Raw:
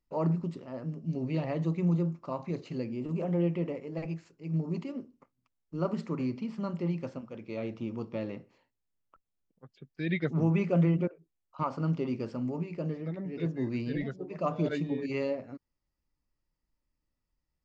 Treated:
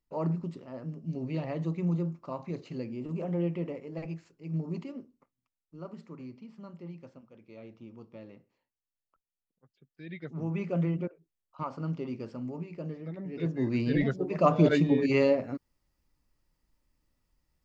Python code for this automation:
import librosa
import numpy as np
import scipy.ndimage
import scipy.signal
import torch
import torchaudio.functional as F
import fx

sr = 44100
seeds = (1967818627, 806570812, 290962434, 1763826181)

y = fx.gain(x, sr, db=fx.line((4.81, -2.0), (5.82, -12.0), (10.14, -12.0), (10.67, -4.0), (13.03, -4.0), (14.1, 8.0)))